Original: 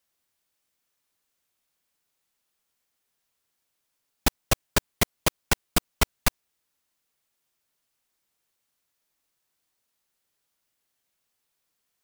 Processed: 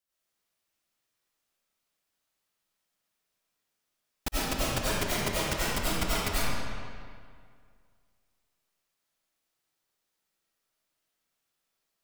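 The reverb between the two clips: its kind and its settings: digital reverb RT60 2.1 s, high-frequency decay 0.75×, pre-delay 55 ms, DRR -10 dB; gain -11.5 dB

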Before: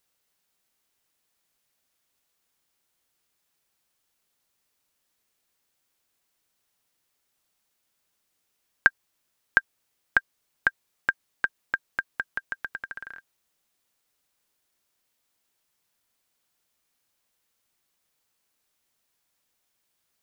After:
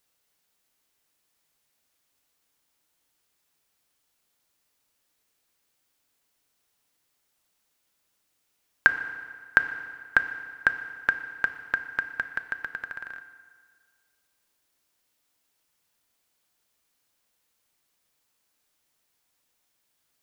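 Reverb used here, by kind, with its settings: FDN reverb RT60 1.8 s, low-frequency decay 0.9×, high-frequency decay 0.85×, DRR 9 dB; gain +1 dB

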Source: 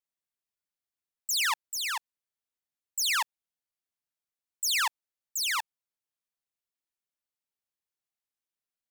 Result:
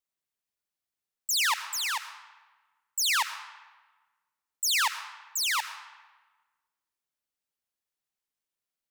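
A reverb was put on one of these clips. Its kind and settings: digital reverb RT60 1.3 s, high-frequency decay 0.75×, pre-delay 50 ms, DRR 11 dB; gain +1.5 dB

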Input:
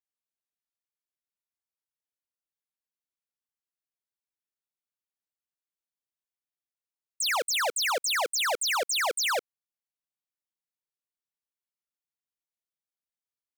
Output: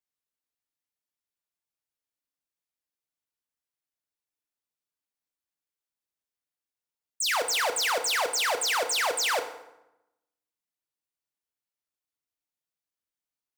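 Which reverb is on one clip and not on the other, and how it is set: FDN reverb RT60 0.9 s, low-frequency decay 1.25×, high-frequency decay 0.7×, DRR 6 dB

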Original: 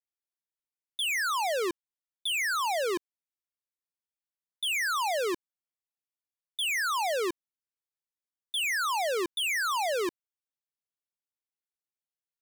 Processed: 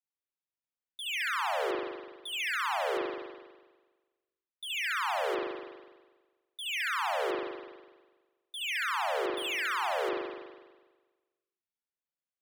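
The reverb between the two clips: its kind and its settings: spring tank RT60 1.3 s, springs 41 ms, chirp 50 ms, DRR -7 dB; gain -10 dB

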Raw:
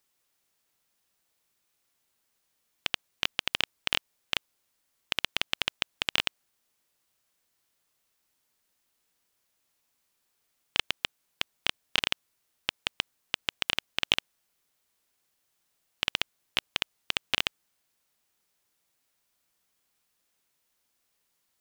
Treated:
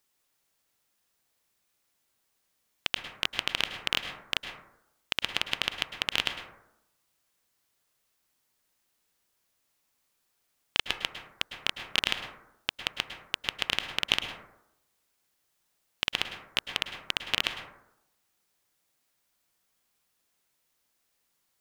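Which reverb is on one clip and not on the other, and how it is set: plate-style reverb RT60 0.82 s, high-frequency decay 0.3×, pre-delay 95 ms, DRR 6.5 dB

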